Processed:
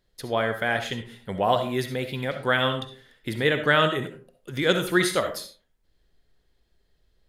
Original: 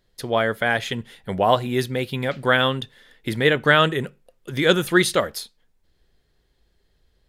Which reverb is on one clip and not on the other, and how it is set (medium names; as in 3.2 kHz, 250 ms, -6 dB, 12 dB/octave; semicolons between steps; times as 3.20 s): algorithmic reverb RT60 0.41 s, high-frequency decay 0.5×, pre-delay 25 ms, DRR 7 dB; trim -4.5 dB